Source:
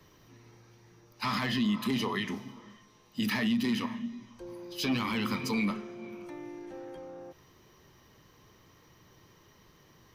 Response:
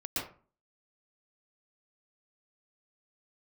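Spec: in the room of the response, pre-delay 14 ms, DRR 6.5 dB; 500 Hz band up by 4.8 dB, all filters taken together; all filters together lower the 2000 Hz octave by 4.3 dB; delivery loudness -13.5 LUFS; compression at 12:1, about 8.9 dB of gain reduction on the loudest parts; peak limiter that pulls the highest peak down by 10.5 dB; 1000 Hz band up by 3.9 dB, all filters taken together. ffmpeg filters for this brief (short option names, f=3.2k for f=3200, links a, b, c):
-filter_complex "[0:a]equalizer=f=500:t=o:g=5.5,equalizer=f=1k:t=o:g=5,equalizer=f=2k:t=o:g=-6.5,acompressor=threshold=-33dB:ratio=12,alimiter=level_in=11.5dB:limit=-24dB:level=0:latency=1,volume=-11.5dB,asplit=2[a][b];[1:a]atrim=start_sample=2205,adelay=14[c];[b][c]afir=irnorm=-1:irlink=0,volume=-11dB[d];[a][d]amix=inputs=2:normalize=0,volume=29.5dB"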